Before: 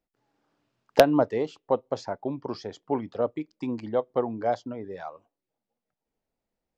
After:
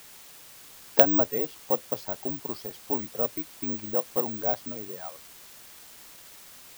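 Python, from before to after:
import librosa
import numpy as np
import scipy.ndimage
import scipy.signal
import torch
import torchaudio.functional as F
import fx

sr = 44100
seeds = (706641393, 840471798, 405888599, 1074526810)

p1 = fx.quant_dither(x, sr, seeds[0], bits=6, dither='triangular')
p2 = x + (p1 * librosa.db_to_amplitude(-4.0))
p3 = (np.kron(scipy.signal.resample_poly(p2, 1, 2), np.eye(2)[0]) * 2)[:len(p2)]
y = p3 * librosa.db_to_amplitude(-8.5)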